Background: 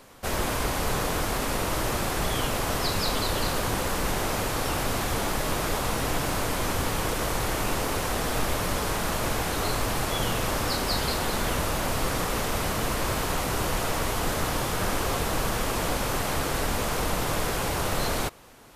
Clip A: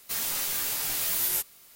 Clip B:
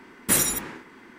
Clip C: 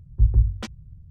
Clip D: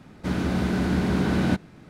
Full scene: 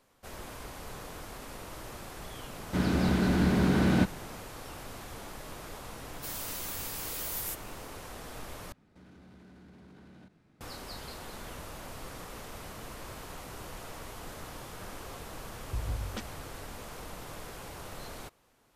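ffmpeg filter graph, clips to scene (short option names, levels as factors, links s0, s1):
-filter_complex "[4:a]asplit=2[s0][s1];[0:a]volume=0.15[s2];[s1]acompressor=threshold=0.00708:ratio=3:attack=8.9:release=24:knee=1:detection=peak[s3];[3:a]acompressor=threshold=0.0562:ratio=6:attack=3.2:release=140:knee=1:detection=peak[s4];[s2]asplit=2[s5][s6];[s5]atrim=end=8.724[s7];[s3]atrim=end=1.89,asetpts=PTS-STARTPTS,volume=0.141[s8];[s6]atrim=start=10.606[s9];[s0]atrim=end=1.89,asetpts=PTS-STARTPTS,volume=0.794,afade=t=in:d=0.004:c=hsin,afade=t=out:st=1.886:d=0.004:c=hsin,adelay=2490[s10];[1:a]atrim=end=1.75,asetpts=PTS-STARTPTS,volume=0.335,afade=t=in:d=0.004:c=hsin,afade=t=out:st=1.746:d=0.004:c=hsin,adelay=6130[s11];[s4]atrim=end=1.1,asetpts=PTS-STARTPTS,volume=0.531,afade=t=in:d=0.004:c=hsin,afade=t=out:st=1.096:d=0.004:c=hsin,adelay=15540[s12];[s7][s8]acrossfade=d=0.004:c1=hsin:c2=hsin[s13];[s13][s9]acrossfade=d=0.004:c1=hsin:c2=hsin[s14];[s14][s10][s11][s12]amix=inputs=4:normalize=0"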